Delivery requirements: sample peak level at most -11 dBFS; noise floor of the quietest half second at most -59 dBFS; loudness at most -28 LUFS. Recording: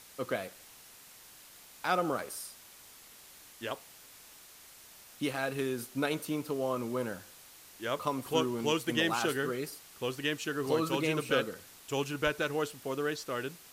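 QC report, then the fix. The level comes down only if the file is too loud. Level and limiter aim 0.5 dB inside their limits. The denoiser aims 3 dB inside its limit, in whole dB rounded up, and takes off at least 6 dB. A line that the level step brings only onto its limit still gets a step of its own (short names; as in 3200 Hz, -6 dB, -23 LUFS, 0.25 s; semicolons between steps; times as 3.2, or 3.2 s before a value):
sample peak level -13.0 dBFS: OK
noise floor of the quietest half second -54 dBFS: fail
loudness -33.5 LUFS: OK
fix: denoiser 8 dB, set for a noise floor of -54 dBFS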